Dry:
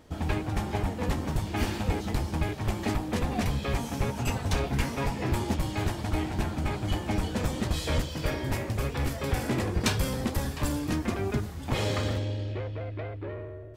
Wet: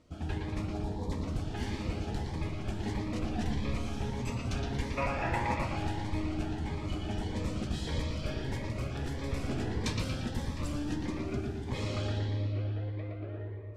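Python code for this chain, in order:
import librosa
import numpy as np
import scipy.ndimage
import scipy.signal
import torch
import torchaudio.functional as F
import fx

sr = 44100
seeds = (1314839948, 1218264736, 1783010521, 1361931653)

y = fx.ellip_bandstop(x, sr, low_hz=1100.0, high_hz=3700.0, order=3, stop_db=40, at=(0.67, 1.12))
y = fx.spec_box(y, sr, start_s=4.97, length_s=0.7, low_hz=480.0, high_hz=2800.0, gain_db=11)
y = scipy.signal.sosfilt(scipy.signal.butter(2, 7900.0, 'lowpass', fs=sr, output='sos'), y)
y = fx.echo_bbd(y, sr, ms=116, stages=4096, feedback_pct=55, wet_db=-3.5)
y = fx.rev_freeverb(y, sr, rt60_s=2.2, hf_ratio=0.6, predelay_ms=80, drr_db=11.0)
y = fx.notch_cascade(y, sr, direction='rising', hz=1.6)
y = y * librosa.db_to_amplitude(-7.5)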